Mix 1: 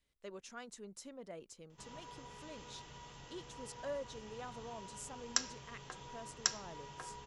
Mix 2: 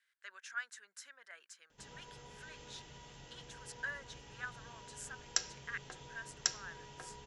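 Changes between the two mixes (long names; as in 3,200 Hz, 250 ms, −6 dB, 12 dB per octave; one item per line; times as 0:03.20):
speech: add high-pass with resonance 1,600 Hz, resonance Q 7.9
background: add parametric band 1,100 Hz −8.5 dB 0.37 octaves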